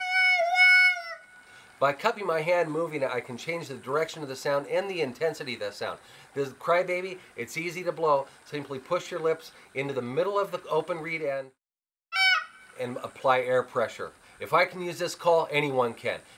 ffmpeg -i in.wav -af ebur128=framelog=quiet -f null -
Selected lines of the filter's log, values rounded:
Integrated loudness:
  I:         -26.5 LUFS
  Threshold: -37.0 LUFS
Loudness range:
  LRA:         5.4 LU
  Threshold: -48.5 LUFS
  LRA low:   -30.9 LUFS
  LRA high:  -25.5 LUFS